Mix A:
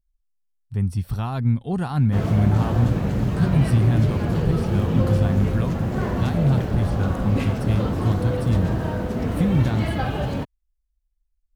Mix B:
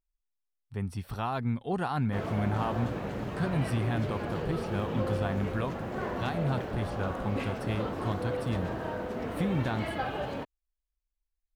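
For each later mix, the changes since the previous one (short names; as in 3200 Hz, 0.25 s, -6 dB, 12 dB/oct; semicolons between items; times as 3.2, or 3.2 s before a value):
background -4.5 dB; master: add tone controls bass -13 dB, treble -7 dB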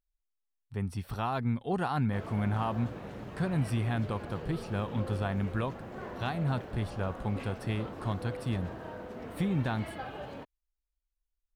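background -7.5 dB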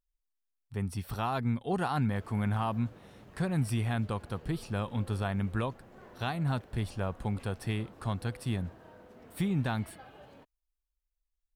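background -11.5 dB; master: add high shelf 5900 Hz +7.5 dB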